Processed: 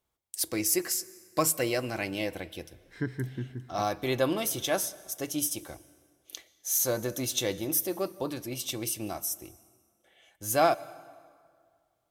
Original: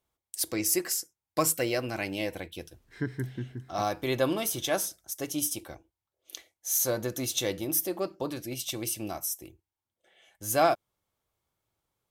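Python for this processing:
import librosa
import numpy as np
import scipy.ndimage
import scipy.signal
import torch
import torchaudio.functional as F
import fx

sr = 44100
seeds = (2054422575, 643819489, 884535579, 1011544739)

y = fx.rev_plate(x, sr, seeds[0], rt60_s=2.0, hf_ratio=0.7, predelay_ms=110, drr_db=20.0)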